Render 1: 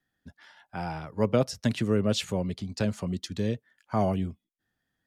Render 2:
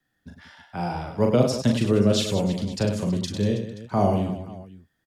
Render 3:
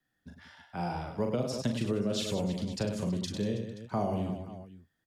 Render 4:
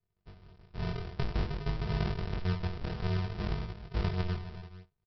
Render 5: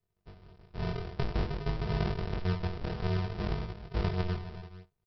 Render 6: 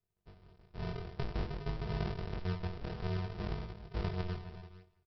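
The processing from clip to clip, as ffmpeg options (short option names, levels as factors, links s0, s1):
-filter_complex "[0:a]acrossover=split=340|1300|2400[s0][s1][s2][s3];[s2]acompressor=threshold=0.00158:ratio=6[s4];[s0][s1][s4][s3]amix=inputs=4:normalize=0,aecho=1:1:40|100|190|325|527.5:0.631|0.398|0.251|0.158|0.1,volume=1.58"
-af "bandreject=f=50:t=h:w=6,bandreject=f=100:t=h:w=6,acompressor=threshold=0.0891:ratio=6,volume=0.531"
-af "aresample=11025,acrusher=samples=40:mix=1:aa=0.000001,aresample=44100,flanger=delay=19:depth=4:speed=0.55,volume=1.33"
-af "equalizer=f=510:t=o:w=2:g=3.5"
-af "aecho=1:1:167|334|501|668:0.0794|0.0413|0.0215|0.0112,volume=0.531"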